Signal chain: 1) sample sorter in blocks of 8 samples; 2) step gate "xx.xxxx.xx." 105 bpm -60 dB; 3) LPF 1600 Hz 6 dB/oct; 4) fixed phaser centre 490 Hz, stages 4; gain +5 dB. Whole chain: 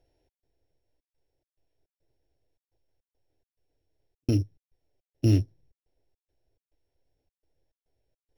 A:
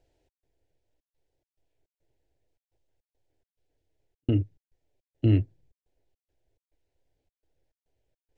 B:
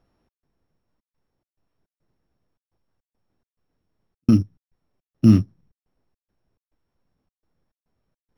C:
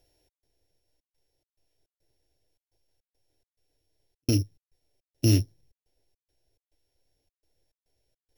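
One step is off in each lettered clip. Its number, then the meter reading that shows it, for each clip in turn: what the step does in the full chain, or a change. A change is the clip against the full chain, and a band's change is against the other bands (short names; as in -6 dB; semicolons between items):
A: 1, distortion -19 dB; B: 4, loudness change +8.0 LU; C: 3, 8 kHz band +12.5 dB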